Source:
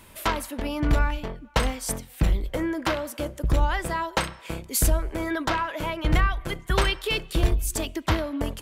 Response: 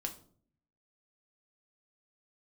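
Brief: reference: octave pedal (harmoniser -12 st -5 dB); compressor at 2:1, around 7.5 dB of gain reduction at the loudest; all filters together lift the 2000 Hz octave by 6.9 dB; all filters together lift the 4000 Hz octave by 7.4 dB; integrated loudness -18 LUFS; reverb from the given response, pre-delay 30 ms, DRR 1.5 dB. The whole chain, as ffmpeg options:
-filter_complex "[0:a]equalizer=f=2k:t=o:g=7,equalizer=f=4k:t=o:g=7,acompressor=threshold=-29dB:ratio=2,asplit=2[a][b];[1:a]atrim=start_sample=2205,adelay=30[c];[b][c]afir=irnorm=-1:irlink=0,volume=-1dB[d];[a][d]amix=inputs=2:normalize=0,asplit=2[e][f];[f]asetrate=22050,aresample=44100,atempo=2,volume=-5dB[g];[e][g]amix=inputs=2:normalize=0,volume=8.5dB"

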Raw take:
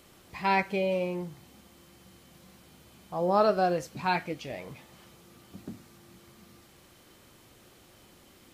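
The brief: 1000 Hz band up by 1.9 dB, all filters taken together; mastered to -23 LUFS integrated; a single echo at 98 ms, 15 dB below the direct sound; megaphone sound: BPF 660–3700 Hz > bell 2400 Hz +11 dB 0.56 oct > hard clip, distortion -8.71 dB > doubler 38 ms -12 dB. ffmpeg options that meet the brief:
-filter_complex "[0:a]highpass=660,lowpass=3.7k,equalizer=f=1k:t=o:g=3.5,equalizer=f=2.4k:t=o:w=0.56:g=11,aecho=1:1:98:0.178,asoftclip=type=hard:threshold=-21.5dB,asplit=2[a][b];[b]adelay=38,volume=-12dB[c];[a][c]amix=inputs=2:normalize=0,volume=6dB"

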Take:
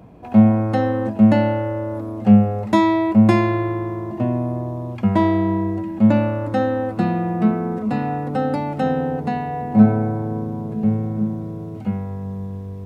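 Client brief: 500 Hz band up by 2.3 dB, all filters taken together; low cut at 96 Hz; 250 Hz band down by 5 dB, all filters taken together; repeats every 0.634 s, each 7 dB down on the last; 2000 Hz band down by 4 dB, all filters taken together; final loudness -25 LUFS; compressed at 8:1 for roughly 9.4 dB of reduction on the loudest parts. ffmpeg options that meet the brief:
-af "highpass=96,equalizer=f=250:t=o:g=-7.5,equalizer=f=500:t=o:g=5,equalizer=f=2k:t=o:g=-5,acompressor=threshold=-21dB:ratio=8,aecho=1:1:634|1268|1902|2536|3170:0.447|0.201|0.0905|0.0407|0.0183,volume=1dB"

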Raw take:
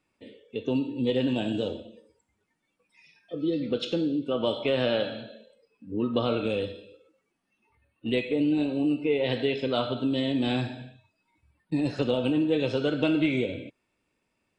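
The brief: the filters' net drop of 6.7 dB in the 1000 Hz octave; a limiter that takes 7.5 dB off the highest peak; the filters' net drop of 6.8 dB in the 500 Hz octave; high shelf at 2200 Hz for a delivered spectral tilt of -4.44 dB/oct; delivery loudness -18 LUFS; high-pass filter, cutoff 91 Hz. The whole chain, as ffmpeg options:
-af "highpass=91,equalizer=f=500:t=o:g=-6.5,equalizer=f=1k:t=o:g=-8,highshelf=f=2.2k:g=4,volume=14.5dB,alimiter=limit=-8dB:level=0:latency=1"

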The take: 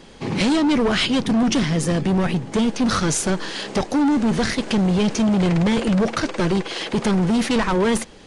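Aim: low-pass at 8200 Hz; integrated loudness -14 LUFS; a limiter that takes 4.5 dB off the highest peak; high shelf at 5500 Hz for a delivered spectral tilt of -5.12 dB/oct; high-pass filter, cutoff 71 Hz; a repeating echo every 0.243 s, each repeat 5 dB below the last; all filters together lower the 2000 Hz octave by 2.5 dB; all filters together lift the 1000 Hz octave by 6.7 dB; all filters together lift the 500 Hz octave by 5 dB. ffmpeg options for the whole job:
-af "highpass=71,lowpass=8.2k,equalizer=f=500:t=o:g=4.5,equalizer=f=1k:t=o:g=8.5,equalizer=f=2k:t=o:g=-7.5,highshelf=f=5.5k:g=5.5,alimiter=limit=-10.5dB:level=0:latency=1,aecho=1:1:243|486|729|972|1215|1458|1701:0.562|0.315|0.176|0.0988|0.0553|0.031|0.0173,volume=4.5dB"

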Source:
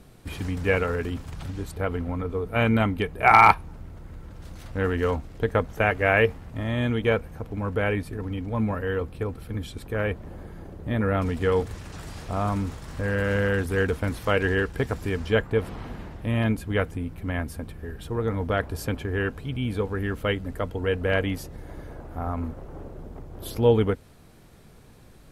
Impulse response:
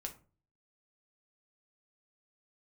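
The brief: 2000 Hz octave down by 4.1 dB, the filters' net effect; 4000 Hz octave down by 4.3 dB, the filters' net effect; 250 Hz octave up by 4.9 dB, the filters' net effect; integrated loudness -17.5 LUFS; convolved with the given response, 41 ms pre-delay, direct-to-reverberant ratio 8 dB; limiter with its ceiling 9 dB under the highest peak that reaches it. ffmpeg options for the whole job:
-filter_complex "[0:a]equalizer=f=250:t=o:g=6,equalizer=f=2k:t=o:g=-4.5,equalizer=f=4k:t=o:g=-4,alimiter=limit=-13.5dB:level=0:latency=1,asplit=2[a][b];[1:a]atrim=start_sample=2205,adelay=41[c];[b][c]afir=irnorm=-1:irlink=0,volume=-5.5dB[d];[a][d]amix=inputs=2:normalize=0,volume=8dB"

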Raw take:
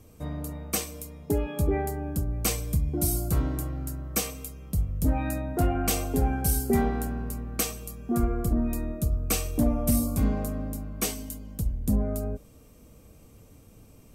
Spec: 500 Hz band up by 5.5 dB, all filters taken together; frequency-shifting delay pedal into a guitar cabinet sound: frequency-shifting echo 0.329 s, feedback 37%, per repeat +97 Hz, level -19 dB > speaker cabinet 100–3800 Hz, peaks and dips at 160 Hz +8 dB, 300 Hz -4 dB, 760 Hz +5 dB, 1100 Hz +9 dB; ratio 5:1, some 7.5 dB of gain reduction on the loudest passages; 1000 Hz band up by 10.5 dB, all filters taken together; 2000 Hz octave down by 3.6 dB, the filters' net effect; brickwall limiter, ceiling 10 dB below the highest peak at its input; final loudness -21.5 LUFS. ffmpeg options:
-filter_complex "[0:a]equalizer=f=500:t=o:g=5.5,equalizer=f=1k:t=o:g=6,equalizer=f=2k:t=o:g=-8.5,acompressor=threshold=-26dB:ratio=5,alimiter=level_in=1dB:limit=-24dB:level=0:latency=1,volume=-1dB,asplit=4[a][b][c][d];[b]adelay=329,afreqshift=97,volume=-19dB[e];[c]adelay=658,afreqshift=194,volume=-27.6dB[f];[d]adelay=987,afreqshift=291,volume=-36.3dB[g];[a][e][f][g]amix=inputs=4:normalize=0,highpass=100,equalizer=f=160:t=q:w=4:g=8,equalizer=f=300:t=q:w=4:g=-4,equalizer=f=760:t=q:w=4:g=5,equalizer=f=1.1k:t=q:w=4:g=9,lowpass=f=3.8k:w=0.5412,lowpass=f=3.8k:w=1.3066,volume=13.5dB"

